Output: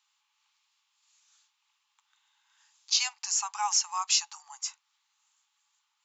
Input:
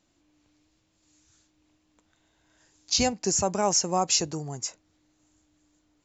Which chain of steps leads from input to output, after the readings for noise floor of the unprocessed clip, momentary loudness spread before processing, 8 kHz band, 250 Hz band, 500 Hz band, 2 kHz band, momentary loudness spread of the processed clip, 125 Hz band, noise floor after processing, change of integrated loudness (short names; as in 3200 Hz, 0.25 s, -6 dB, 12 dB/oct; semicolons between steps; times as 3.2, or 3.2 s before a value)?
-71 dBFS, 11 LU, n/a, under -40 dB, under -35 dB, 0.0 dB, 11 LU, under -40 dB, -78 dBFS, -2.5 dB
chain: rippled Chebyshev high-pass 820 Hz, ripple 6 dB; gain +2.5 dB